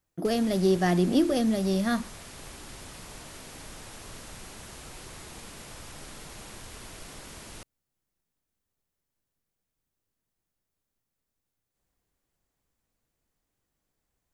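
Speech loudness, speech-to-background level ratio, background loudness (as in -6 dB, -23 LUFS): -25.5 LUFS, 18.0 dB, -43.5 LUFS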